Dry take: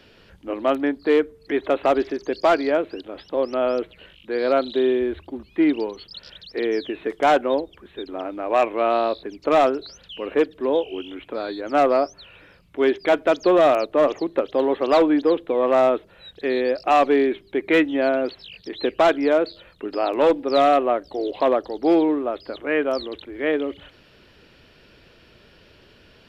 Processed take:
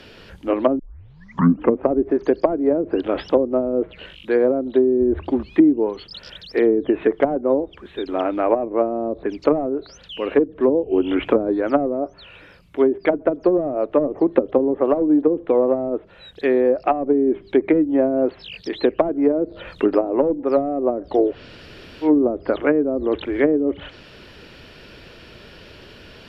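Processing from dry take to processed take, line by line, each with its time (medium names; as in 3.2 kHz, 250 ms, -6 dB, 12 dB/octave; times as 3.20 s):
0.79 s: tape start 1.09 s
21.28–22.09 s: room tone, crossfade 0.16 s
whole clip: gain riding 0.5 s; dynamic bell 4.1 kHz, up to -7 dB, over -51 dBFS, Q 3; low-pass that closes with the level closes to 300 Hz, closed at -16 dBFS; trim +7 dB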